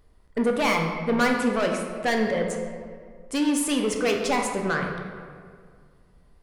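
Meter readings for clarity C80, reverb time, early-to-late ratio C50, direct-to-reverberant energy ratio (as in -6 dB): 5.5 dB, 2.0 s, 4.0 dB, 1.5 dB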